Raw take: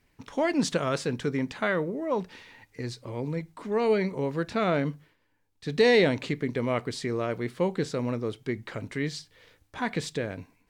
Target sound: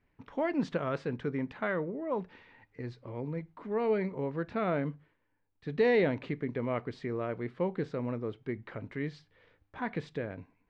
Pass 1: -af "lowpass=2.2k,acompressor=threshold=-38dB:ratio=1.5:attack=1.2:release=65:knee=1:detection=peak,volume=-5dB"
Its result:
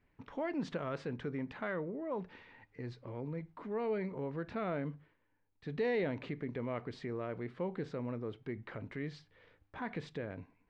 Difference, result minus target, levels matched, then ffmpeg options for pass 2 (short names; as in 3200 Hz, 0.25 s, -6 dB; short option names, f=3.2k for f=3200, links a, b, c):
compressor: peak gain reduction +8.5 dB
-af "lowpass=2.2k,volume=-5dB"